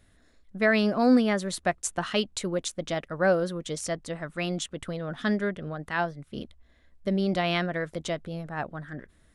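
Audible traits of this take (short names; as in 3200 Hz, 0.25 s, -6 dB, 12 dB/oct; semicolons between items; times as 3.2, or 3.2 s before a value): noise floor -62 dBFS; spectral tilt -4.5 dB/oct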